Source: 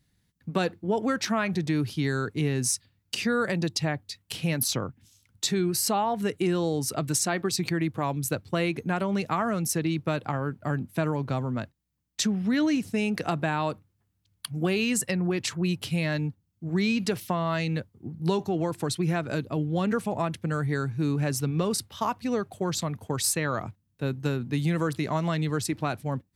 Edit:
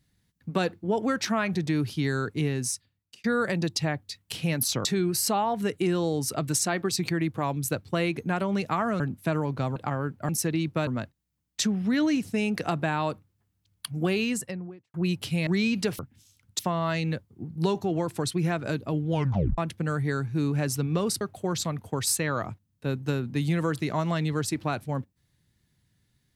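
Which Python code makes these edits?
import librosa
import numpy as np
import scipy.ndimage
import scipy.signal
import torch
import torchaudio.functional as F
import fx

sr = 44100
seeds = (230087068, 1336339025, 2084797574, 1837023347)

y = fx.studio_fade_out(x, sr, start_s=14.7, length_s=0.84)
y = fx.edit(y, sr, fx.fade_out_span(start_s=2.4, length_s=0.84),
    fx.move(start_s=4.85, length_s=0.6, to_s=17.23),
    fx.swap(start_s=9.6, length_s=0.58, other_s=10.71, other_length_s=0.76),
    fx.cut(start_s=16.07, length_s=0.64),
    fx.tape_stop(start_s=19.74, length_s=0.48),
    fx.cut(start_s=21.85, length_s=0.53), tone=tone)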